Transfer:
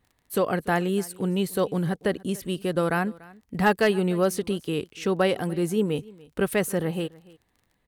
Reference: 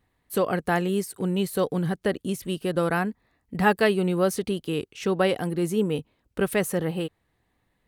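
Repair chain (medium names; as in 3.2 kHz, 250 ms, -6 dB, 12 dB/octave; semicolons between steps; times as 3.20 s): clip repair -11 dBFS; de-click; inverse comb 290 ms -22.5 dB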